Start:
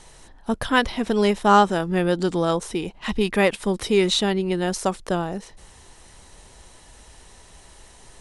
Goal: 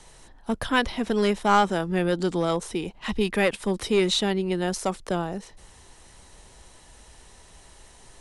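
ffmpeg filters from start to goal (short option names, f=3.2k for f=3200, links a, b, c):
-filter_complex "[0:a]acrossover=split=170|1200|2000[a][b][c][d];[b]aeval=exprs='clip(val(0),-1,0.178)':c=same[e];[a][e][c][d]amix=inputs=4:normalize=0,volume=-2.5dB"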